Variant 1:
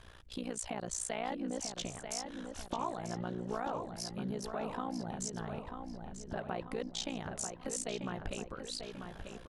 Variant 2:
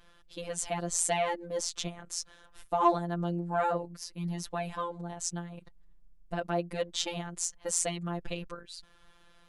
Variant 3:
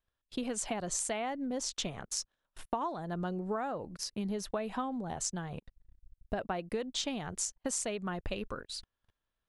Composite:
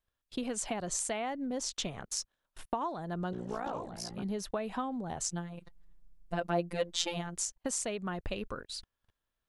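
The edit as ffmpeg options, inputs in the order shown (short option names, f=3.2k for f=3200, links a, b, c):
-filter_complex "[2:a]asplit=3[a][b][c];[a]atrim=end=3.332[d];[0:a]atrim=start=3.328:end=4.232[e];[b]atrim=start=4.228:end=5.292[f];[1:a]atrim=start=5.288:end=7.362[g];[c]atrim=start=7.358[h];[d][e]acrossfade=d=0.004:c1=hsin:c2=hsin[i];[i][f]acrossfade=d=0.004:c1=hsin:c2=hsin[j];[j][g]acrossfade=d=0.004:c1=hsin:c2=hsin[k];[k][h]acrossfade=d=0.004:c1=hsin:c2=hsin"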